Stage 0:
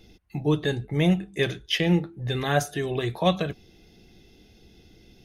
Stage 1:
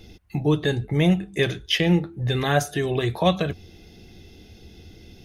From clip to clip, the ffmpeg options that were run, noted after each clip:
ffmpeg -i in.wav -filter_complex "[0:a]equalizer=frequency=86:width=3.8:gain=9,asplit=2[link_01][link_02];[link_02]acompressor=threshold=-30dB:ratio=6,volume=0dB[link_03];[link_01][link_03]amix=inputs=2:normalize=0" out.wav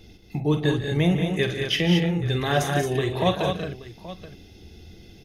ffmpeg -i in.wav -af "aecho=1:1:47|146|186|222|827:0.316|0.211|0.422|0.501|0.158,volume=-2.5dB" out.wav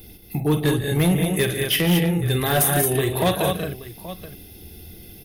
ffmpeg -i in.wav -af "aexciter=amount=13.4:drive=5.2:freq=9100,asoftclip=type=hard:threshold=-16.5dB,volume=3dB" out.wav

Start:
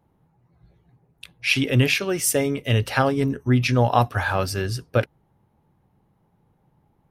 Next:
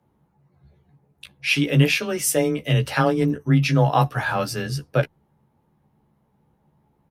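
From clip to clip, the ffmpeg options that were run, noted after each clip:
ffmpeg -i in.wav -filter_complex "[0:a]afreqshift=18,asplit=2[link_01][link_02];[link_02]adelay=14,volume=-5dB[link_03];[link_01][link_03]amix=inputs=2:normalize=0,volume=-1.5dB" out.wav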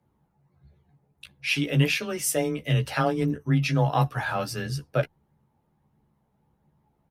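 ffmpeg -i in.wav -af "flanger=delay=0.4:depth=1.2:regen=69:speed=1.5:shape=triangular" out.wav

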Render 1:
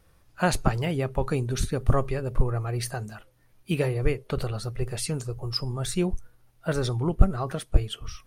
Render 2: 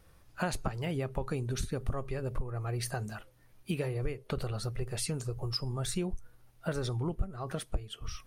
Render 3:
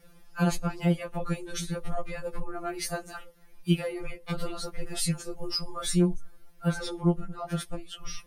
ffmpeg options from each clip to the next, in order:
ffmpeg -i in.wav -af "acompressor=threshold=-31dB:ratio=4" out.wav
ffmpeg -i in.wav -af "afftfilt=real='re*2.83*eq(mod(b,8),0)':imag='im*2.83*eq(mod(b,8),0)':win_size=2048:overlap=0.75,volume=7dB" out.wav

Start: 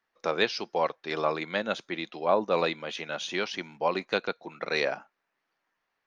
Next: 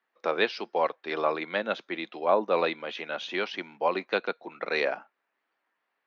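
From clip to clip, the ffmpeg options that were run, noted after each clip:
ffmpeg -i in.wav -filter_complex "[0:a]acrossover=split=190 4300:gain=0.0708 1 0.0794[link_01][link_02][link_03];[link_01][link_02][link_03]amix=inputs=3:normalize=0,volume=1dB" out.wav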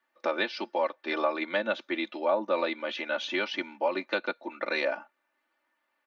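ffmpeg -i in.wav -af "acompressor=threshold=-28dB:ratio=2.5,aecho=1:1:3.4:0.92" out.wav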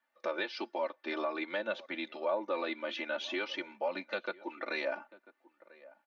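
ffmpeg -i in.wav -filter_complex "[0:a]asplit=2[link_01][link_02];[link_02]adelay=991.3,volume=-22dB,highshelf=frequency=4000:gain=-22.3[link_03];[link_01][link_03]amix=inputs=2:normalize=0,asplit=2[link_04][link_05];[link_05]alimiter=limit=-23dB:level=0:latency=1:release=130,volume=2dB[link_06];[link_04][link_06]amix=inputs=2:normalize=0,flanger=delay=1.2:depth=2.3:regen=-49:speed=0.5:shape=triangular,volume=-7dB" out.wav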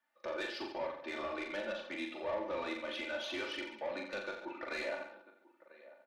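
ffmpeg -i in.wav -filter_complex "[0:a]asoftclip=type=tanh:threshold=-30.5dB,asplit=2[link_01][link_02];[link_02]aecho=0:1:40|86|138.9|199.7|269.7:0.631|0.398|0.251|0.158|0.1[link_03];[link_01][link_03]amix=inputs=2:normalize=0,volume=-3dB" out.wav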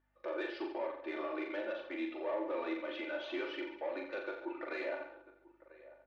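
ffmpeg -i in.wav -af "highpass=120,lowpass=2900,aeval=exprs='val(0)+0.000398*(sin(2*PI*50*n/s)+sin(2*PI*2*50*n/s)/2+sin(2*PI*3*50*n/s)/3+sin(2*PI*4*50*n/s)/4+sin(2*PI*5*50*n/s)/5)':channel_layout=same,lowshelf=frequency=250:width_type=q:width=3:gain=-8.5,volume=-1.5dB" out.wav

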